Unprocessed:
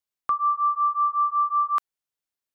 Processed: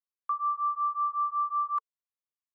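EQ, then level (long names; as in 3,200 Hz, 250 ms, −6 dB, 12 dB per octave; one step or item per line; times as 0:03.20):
pair of resonant band-passes 700 Hz, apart 1.3 octaves
spectral tilt +5.5 dB per octave
−5.0 dB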